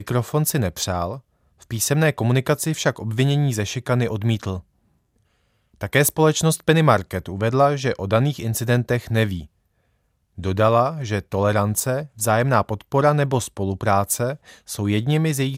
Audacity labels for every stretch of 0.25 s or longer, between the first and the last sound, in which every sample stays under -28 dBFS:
1.160000	1.710000	silence
4.590000	5.810000	silence
9.420000	10.380000	silence
14.340000	14.690000	silence